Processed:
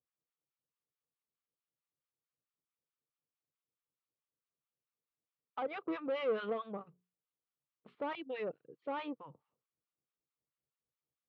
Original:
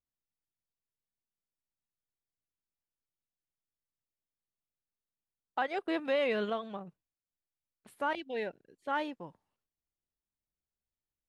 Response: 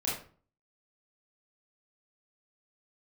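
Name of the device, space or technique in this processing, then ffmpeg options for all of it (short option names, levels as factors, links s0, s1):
guitar amplifier with harmonic tremolo: -filter_complex "[0:a]acrossover=split=890[s0][s1];[s0]aeval=exprs='val(0)*(1-1/2+1/2*cos(2*PI*4.6*n/s))':c=same[s2];[s1]aeval=exprs='val(0)*(1-1/2-1/2*cos(2*PI*4.6*n/s))':c=same[s3];[s2][s3]amix=inputs=2:normalize=0,asoftclip=type=tanh:threshold=0.0141,highpass=100,equalizer=f=140:t=q:w=4:g=9,equalizer=f=310:t=q:w=4:g=4,equalizer=f=480:t=q:w=4:g=9,equalizer=f=1200:t=q:w=4:g=9,equalizer=f=1700:t=q:w=4:g=-5,lowpass=f=3400:w=0.5412,lowpass=f=3400:w=1.3066,asettb=1/sr,asplit=3[s4][s5][s6];[s4]atrim=end=6.774[s7];[s5]atrim=start=6.77:end=7.95,asetpts=PTS-STARTPTS,afade=t=in:d=0.004:c=qsin,afade=t=out:st=1.176:d=0.004:c=qsin,bandreject=f=60:t=h:w=6,bandreject=f=120:t=h:w=6,bandreject=f=180:t=h:w=6,bandreject=f=240:t=h:w=6,bandreject=f=300:t=h:w=6,bandreject=f=360:t=h:w=6,bandreject=f=420:t=h:w=6[s8];[s6]atrim=start=7.946[s9];[s7][s8]acrossfade=d=0.004:c1=hsin:c2=qsin[s10];[s10][s9]acrossfade=d=0.004:c1=qsin:c2=hsin,volume=1.12"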